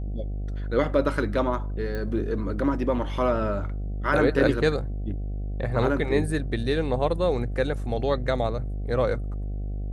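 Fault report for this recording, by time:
mains buzz 50 Hz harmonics 15 −30 dBFS
0:01.95: click −21 dBFS

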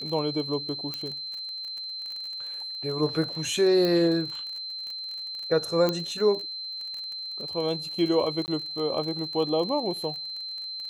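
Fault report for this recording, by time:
surface crackle 30 per second −33 dBFS
whistle 4,100 Hz −33 dBFS
0:00.94: click −17 dBFS
0:03.85: click −15 dBFS
0:05.89: click −12 dBFS
0:08.46–0:08.48: drop-out 19 ms

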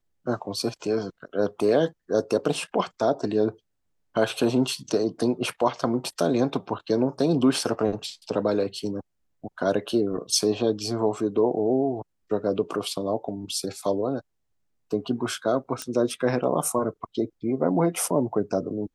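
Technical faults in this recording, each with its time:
0:15.82: click −16 dBFS

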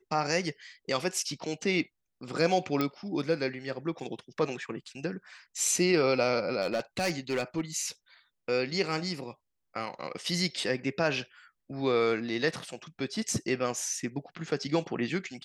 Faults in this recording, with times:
0:02.81: click −15 dBFS
0:06.61–0:07.61: clipping −24.5 dBFS

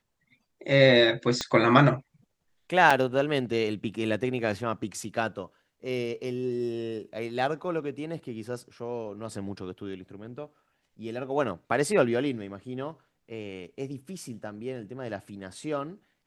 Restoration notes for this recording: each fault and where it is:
0:01.41: click −14 dBFS
0:02.90–0:02.91: drop-out 5.3 ms

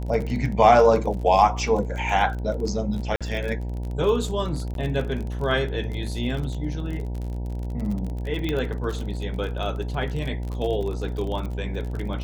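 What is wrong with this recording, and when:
mains buzz 60 Hz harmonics 16 −29 dBFS
surface crackle 31 per second −30 dBFS
0:03.16–0:03.21: drop-out 46 ms
0:04.74–0:04.75: drop-out 12 ms
0:08.49: click −14 dBFS

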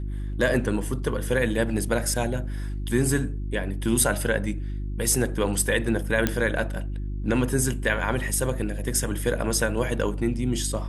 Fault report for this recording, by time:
mains hum 50 Hz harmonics 7 −30 dBFS
0:06.27: click −7 dBFS

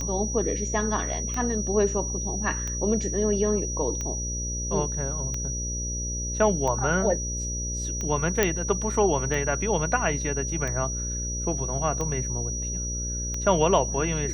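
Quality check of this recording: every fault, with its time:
mains buzz 60 Hz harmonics 10 −32 dBFS
scratch tick 45 rpm −18 dBFS
whistle 5,800 Hz −31 dBFS
0:08.43: click −6 dBFS

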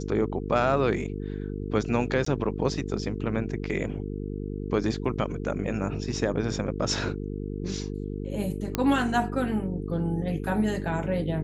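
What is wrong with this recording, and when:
mains buzz 50 Hz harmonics 9 −33 dBFS
0:02.25–0:02.26: drop-out 14 ms
0:08.75: click −10 dBFS

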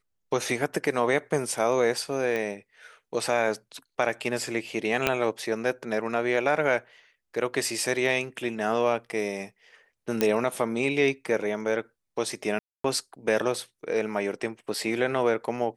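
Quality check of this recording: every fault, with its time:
0:02.36: click −17 dBFS
0:05.07: click −7 dBFS
0:10.21: click −9 dBFS
0:12.59–0:12.84: drop-out 254 ms

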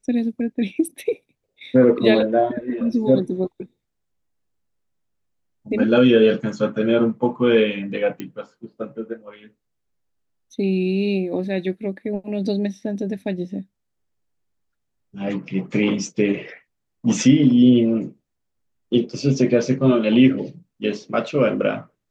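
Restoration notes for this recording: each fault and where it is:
0:08.20: click −16 dBFS

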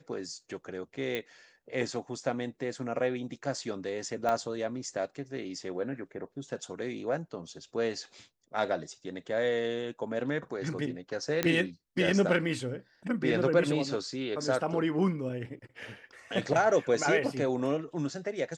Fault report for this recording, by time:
0:01.15: click −19 dBFS
0:04.29: click −18 dBFS
0:11.43: click −11 dBFS

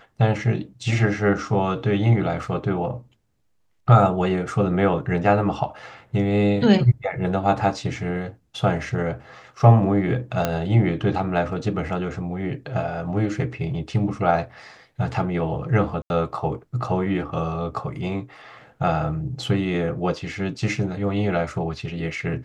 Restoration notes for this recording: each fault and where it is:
0:10.45: click −7 dBFS
0:16.02–0:16.10: drop-out 81 ms

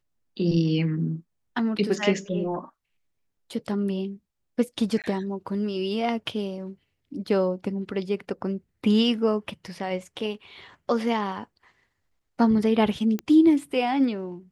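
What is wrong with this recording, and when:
0:05.02–0:05.04: drop-out 18 ms
0:13.19: click −16 dBFS

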